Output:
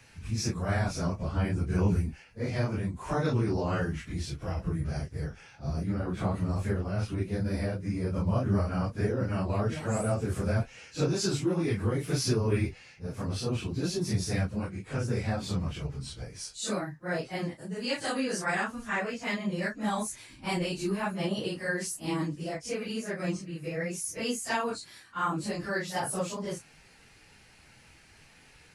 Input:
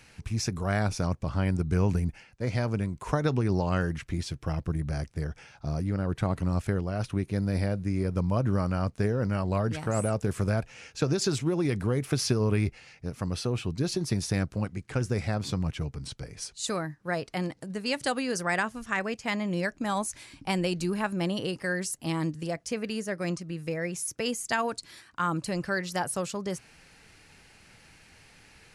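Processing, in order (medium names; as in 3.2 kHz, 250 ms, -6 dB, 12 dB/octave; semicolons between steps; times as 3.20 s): phase randomisation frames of 100 ms; trim -1.5 dB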